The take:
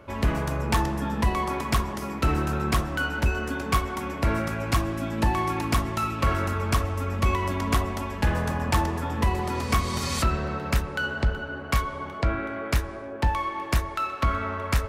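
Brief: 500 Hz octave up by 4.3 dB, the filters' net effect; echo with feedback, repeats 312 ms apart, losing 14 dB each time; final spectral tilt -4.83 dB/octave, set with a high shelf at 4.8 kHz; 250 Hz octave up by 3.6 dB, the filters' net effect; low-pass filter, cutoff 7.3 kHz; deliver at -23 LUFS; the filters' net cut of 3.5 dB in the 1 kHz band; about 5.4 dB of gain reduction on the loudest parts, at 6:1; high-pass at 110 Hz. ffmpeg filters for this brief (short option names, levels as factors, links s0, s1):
-af "highpass=110,lowpass=7300,equalizer=f=250:t=o:g=3.5,equalizer=f=500:t=o:g=6,equalizer=f=1000:t=o:g=-6.5,highshelf=f=4800:g=9,acompressor=threshold=0.0562:ratio=6,aecho=1:1:312|624:0.2|0.0399,volume=2.24"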